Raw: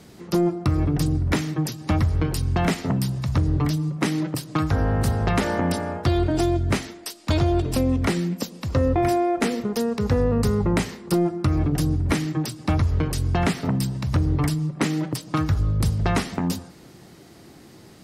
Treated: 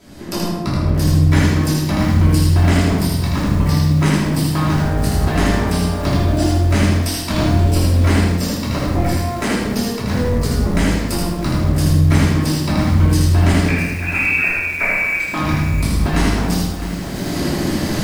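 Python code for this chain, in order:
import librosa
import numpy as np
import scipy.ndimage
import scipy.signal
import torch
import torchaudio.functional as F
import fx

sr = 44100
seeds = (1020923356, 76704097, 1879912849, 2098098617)

p1 = fx.recorder_agc(x, sr, target_db=-17.5, rise_db_per_s=25.0, max_gain_db=30)
p2 = fx.hpss(p1, sr, part='harmonic', gain_db=-10)
p3 = np.clip(p2, -10.0 ** (-25.0 / 20.0), 10.0 ** (-25.0 / 20.0))
p4 = p2 + (p3 * librosa.db_to_amplitude(-4.0))
p5 = fx.freq_invert(p4, sr, carrier_hz=2600, at=(13.68, 15.2))
p6 = fx.echo_feedback(p5, sr, ms=79, feedback_pct=32, wet_db=-3.0)
p7 = fx.room_shoebox(p6, sr, seeds[0], volume_m3=340.0, walls='mixed', distance_m=2.9)
p8 = fx.echo_crushed(p7, sr, ms=657, feedback_pct=35, bits=4, wet_db=-11.5)
y = p8 * librosa.db_to_amplitude(-4.0)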